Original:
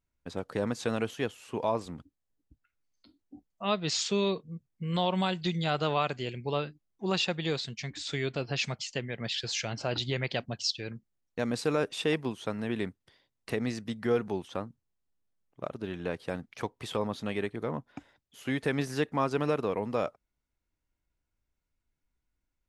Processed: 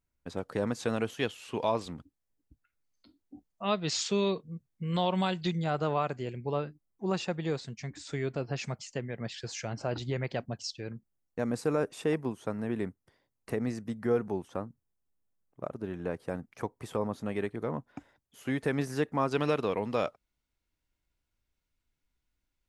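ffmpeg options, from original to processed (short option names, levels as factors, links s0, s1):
-af "asetnsamples=n=441:p=0,asendcmd='1.19 equalizer g 5.5;1.93 equalizer g -2.5;5.51 equalizer g -12.5;17.36 equalizer g -6;19.32 equalizer g 5',equalizer=f=3500:t=o:w=1.4:g=-2.5"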